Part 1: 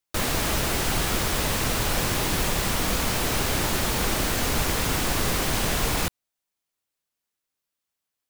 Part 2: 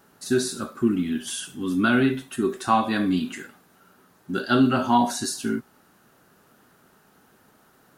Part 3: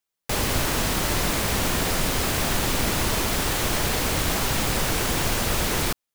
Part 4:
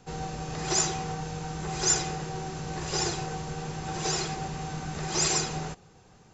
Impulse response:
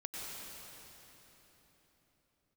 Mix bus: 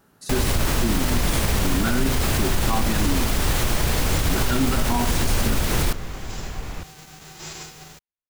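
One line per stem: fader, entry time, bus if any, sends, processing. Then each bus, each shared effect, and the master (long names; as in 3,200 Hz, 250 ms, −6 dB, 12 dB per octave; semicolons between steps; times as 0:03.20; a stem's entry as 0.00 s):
−12.0 dB, 0.75 s, no send, low-pass filter 3,000 Hz
−3.0 dB, 0.00 s, no send, no processing
+0.5 dB, 0.00 s, no send, no processing
−11.5 dB, 2.25 s, no send, spectral envelope flattened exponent 0.3; bit reduction 6 bits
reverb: not used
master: low-shelf EQ 130 Hz +10.5 dB; brickwall limiter −11 dBFS, peak gain reduction 7.5 dB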